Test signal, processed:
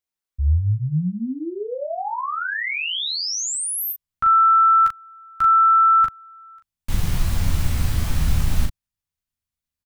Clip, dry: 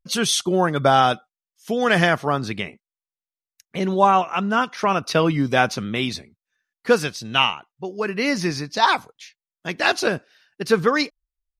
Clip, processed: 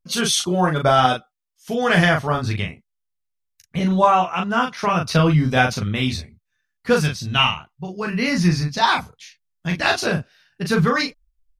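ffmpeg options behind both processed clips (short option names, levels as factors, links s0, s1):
-af "aecho=1:1:12|39:0.501|0.631,asubboost=boost=10:cutoff=130,volume=0.891"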